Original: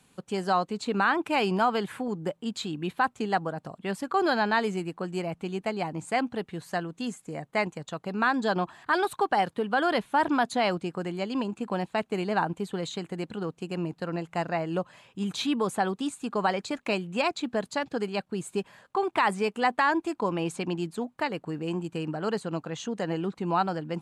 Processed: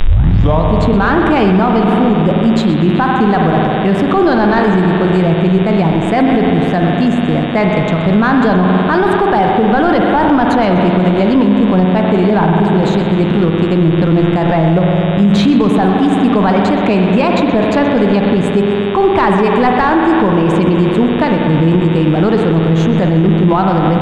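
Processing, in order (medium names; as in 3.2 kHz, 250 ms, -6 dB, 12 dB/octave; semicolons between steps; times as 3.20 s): tape start-up on the opening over 0.64 s; in parallel at -6.5 dB: small samples zeroed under -38 dBFS; on the sum: expander -46 dBFS; spring tank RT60 2.9 s, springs 49 ms, chirp 50 ms, DRR 3 dB; saturation -11 dBFS, distortion -22 dB; RIAA curve playback; mains buzz 100 Hz, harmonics 38, -40 dBFS -2 dB/octave; loudness maximiser +16 dB; modulated delay 125 ms, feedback 57%, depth 97 cents, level -15.5 dB; trim -2.5 dB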